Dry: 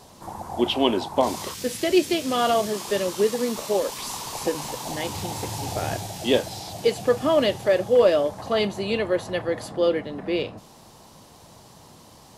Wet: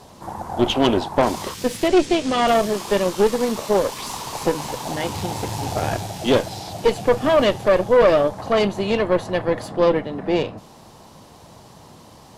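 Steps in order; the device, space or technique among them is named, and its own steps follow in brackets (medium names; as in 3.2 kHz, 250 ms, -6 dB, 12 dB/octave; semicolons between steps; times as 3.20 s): 1.88–2.48 s: low-pass 8.9 kHz 24 dB/octave; tube preamp driven hard (valve stage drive 18 dB, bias 0.75; treble shelf 3.9 kHz -6 dB); trim +9 dB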